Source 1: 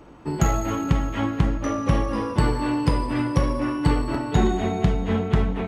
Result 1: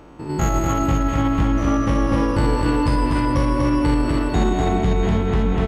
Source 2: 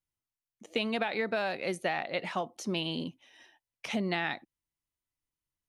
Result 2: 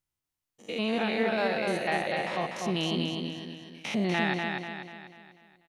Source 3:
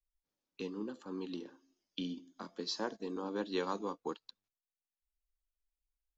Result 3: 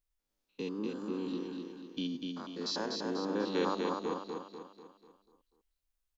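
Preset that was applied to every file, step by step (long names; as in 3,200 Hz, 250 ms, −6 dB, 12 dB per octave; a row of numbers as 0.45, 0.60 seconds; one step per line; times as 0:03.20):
spectrum averaged block by block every 100 ms
repeating echo 245 ms, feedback 46%, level −4 dB
boost into a limiter +13 dB
level −8.5 dB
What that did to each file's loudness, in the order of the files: +3.5, +3.5, +4.0 LU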